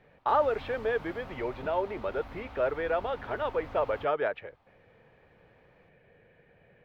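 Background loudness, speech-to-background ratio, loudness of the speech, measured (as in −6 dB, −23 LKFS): −46.5 LKFS, 15.5 dB, −31.0 LKFS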